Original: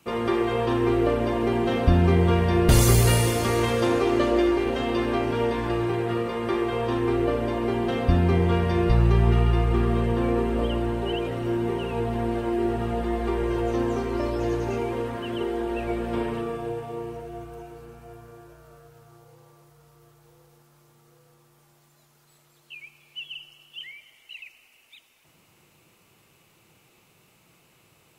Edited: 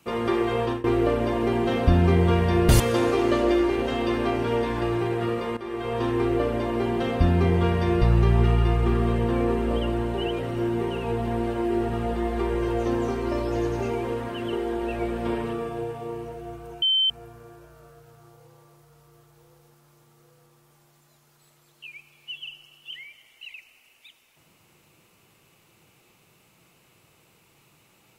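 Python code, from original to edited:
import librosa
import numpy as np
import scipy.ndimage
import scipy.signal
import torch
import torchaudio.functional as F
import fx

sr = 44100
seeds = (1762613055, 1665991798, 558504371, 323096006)

y = fx.edit(x, sr, fx.fade_out_to(start_s=0.58, length_s=0.26, curve='qsin', floor_db=-22.5),
    fx.cut(start_s=2.8, length_s=0.88),
    fx.fade_in_from(start_s=6.45, length_s=0.44, floor_db=-15.0),
    fx.bleep(start_s=17.7, length_s=0.28, hz=3090.0, db=-18.0), tone=tone)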